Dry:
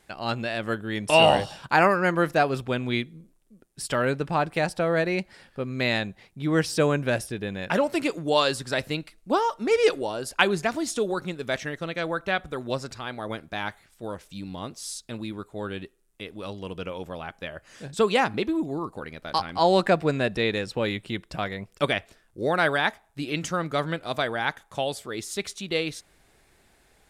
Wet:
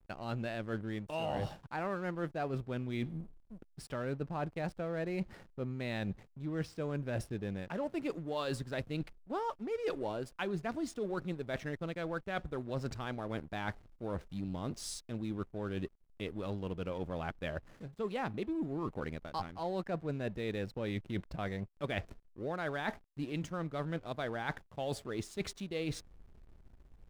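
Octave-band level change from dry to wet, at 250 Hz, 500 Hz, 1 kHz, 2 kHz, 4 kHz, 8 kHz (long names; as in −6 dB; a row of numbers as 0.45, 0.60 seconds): −9.0, −13.0, −15.0, −15.5, −17.5, −14.0 decibels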